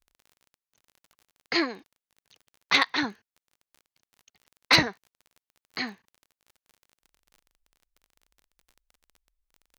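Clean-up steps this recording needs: clip repair -9 dBFS; de-click

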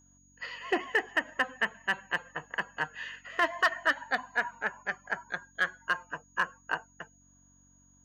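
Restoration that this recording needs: clip repair -18 dBFS; de-hum 46.8 Hz, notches 6; notch 6700 Hz, Q 30

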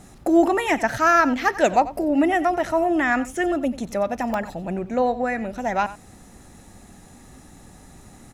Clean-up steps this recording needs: interpolate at 4.34, 1.7 ms; inverse comb 91 ms -16 dB

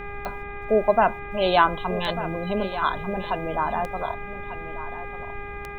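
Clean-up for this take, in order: de-click; de-hum 405.7 Hz, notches 6; noise print and reduce 30 dB; inverse comb 1.194 s -12.5 dB

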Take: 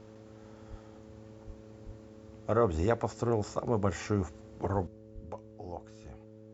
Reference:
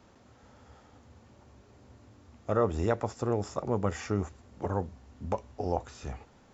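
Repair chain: de-hum 108.5 Hz, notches 5; de-plosive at 0.7/1.46/1.85/4.73/5.14; gain 0 dB, from 4.87 s +11.5 dB

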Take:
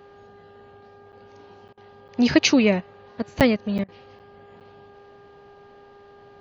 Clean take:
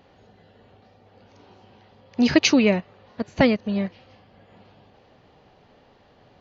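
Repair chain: de-hum 403.9 Hz, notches 4; interpolate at 1.12/1.68/2.08/3.4/3.78/4.19/4.6, 7.8 ms; interpolate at 1.73/3.84, 43 ms

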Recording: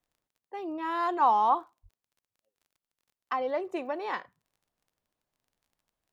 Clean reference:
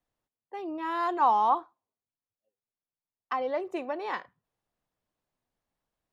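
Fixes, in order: de-click; de-plosive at 1.82

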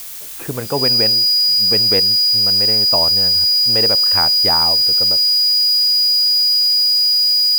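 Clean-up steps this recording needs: notch 4900 Hz, Q 30; noise print and reduce 30 dB

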